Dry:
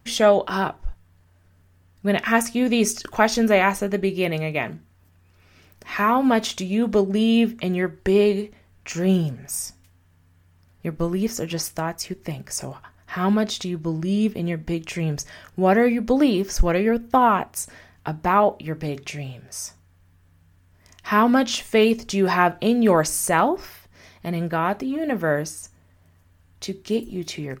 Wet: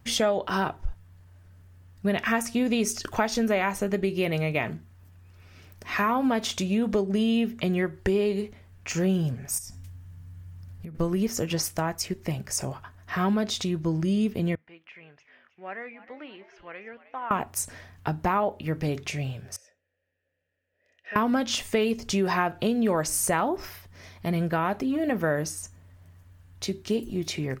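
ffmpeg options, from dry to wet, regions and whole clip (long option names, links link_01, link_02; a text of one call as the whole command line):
ffmpeg -i in.wav -filter_complex "[0:a]asettb=1/sr,asplit=3[link_01][link_02][link_03];[link_01]atrim=end=9.584[link_04];[link_02]atrim=start=9.58:end=10.95,asetpts=PTS-STARTPTS,afade=type=in:duration=0.004:curve=qsin,afade=type=out:start_time=1.366:duration=0.004:curve=qsin,bass=frequency=250:gain=9,treble=frequency=4000:gain=3,acompressor=threshold=-36dB:ratio=12:attack=3.2:release=140:knee=1:detection=peak[link_05];[link_03]atrim=start=10.946[link_06];[link_04][link_05]acrossfade=duration=0.004:curve1=hsin:curve2=qsin[link_07];[link_07][link_06]acrossfade=duration=0.004:curve1=qsin:curve2=hsin,asettb=1/sr,asplit=3[link_08][link_09][link_10];[link_08]atrim=end=14.554[link_11];[link_09]atrim=start=14.55:end=17.31,asetpts=PTS-STARTPTS,afade=type=in:duration=0.004:curve=qsin,afade=type=out:start_time=2.756:duration=0.004:curve=qsin,lowpass=frequency=2300:width=0.5412,lowpass=frequency=2300:width=1.3066,aderivative,asplit=5[link_12][link_13][link_14][link_15][link_16];[link_13]adelay=312,afreqshift=92,volume=-16dB[link_17];[link_14]adelay=624,afreqshift=184,volume=-22.4dB[link_18];[link_15]adelay=936,afreqshift=276,volume=-28.8dB[link_19];[link_16]adelay=1248,afreqshift=368,volume=-35.1dB[link_20];[link_12][link_17][link_18][link_19][link_20]amix=inputs=5:normalize=0,atrim=end_sample=121716[link_21];[link_10]atrim=start=17.306[link_22];[link_11][link_21]acrossfade=duration=0.004:curve1=hsin:curve2=qsin[link_23];[link_23][link_22]acrossfade=duration=0.004:curve1=qsin:curve2=hsin,asettb=1/sr,asplit=3[link_24][link_25][link_26];[link_24]atrim=end=19.564[link_27];[link_25]atrim=start=19.56:end=21.16,asetpts=PTS-STARTPTS,afade=type=in:duration=0.004:curve=qsin,afade=type=out:start_time=1.596:duration=0.004:curve=qsin,asplit=3[link_28][link_29][link_30];[link_28]bandpass=frequency=530:width_type=q:width=8,volume=0dB[link_31];[link_29]bandpass=frequency=1840:width_type=q:width=8,volume=-6dB[link_32];[link_30]bandpass=frequency=2480:width_type=q:width=8,volume=-9dB[link_33];[link_31][link_32][link_33]amix=inputs=3:normalize=0,equalizer=frequency=130:width_type=o:width=0.57:gain=-13[link_34];[link_26]atrim=start=21.156[link_35];[link_27][link_34]acrossfade=duration=0.004:curve1=hsin:curve2=qsin[link_36];[link_36][link_35]acrossfade=duration=0.004:curve1=qsin:curve2=hsin,acompressor=threshold=-22dB:ratio=4,equalizer=frequency=97:width=2.5:gain=7" out.wav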